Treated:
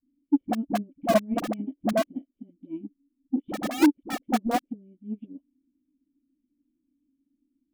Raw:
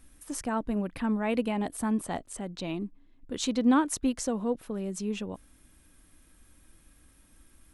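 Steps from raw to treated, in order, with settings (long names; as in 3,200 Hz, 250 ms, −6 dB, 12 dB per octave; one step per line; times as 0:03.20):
formant resonators in series i
parametric band 250 Hz +11 dB 1 octave
wrap-around overflow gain 20 dB
dynamic equaliser 490 Hz, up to +5 dB, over −48 dBFS, Q 3.2
hollow resonant body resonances 310/560 Hz, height 13 dB, ringing for 20 ms
all-pass dispersion highs, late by 59 ms, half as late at 400 Hz
soft clipping −8 dBFS, distortion −21 dB
expander for the loud parts 2.5 to 1, over −28 dBFS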